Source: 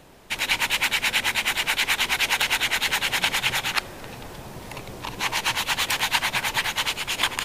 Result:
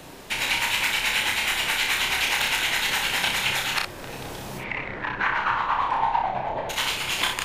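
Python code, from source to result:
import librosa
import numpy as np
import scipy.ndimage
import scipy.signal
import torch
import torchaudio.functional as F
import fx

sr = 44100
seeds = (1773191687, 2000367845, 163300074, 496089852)

y = fx.lowpass_res(x, sr, hz=fx.line((4.57, 2400.0), (6.69, 580.0)), q=4.9, at=(4.57, 6.69), fade=0.02)
y = fx.room_early_taps(y, sr, ms=(31, 61), db=(-3.5, -6.0))
y = fx.band_squash(y, sr, depth_pct=40)
y = y * librosa.db_to_amplitude(-3.0)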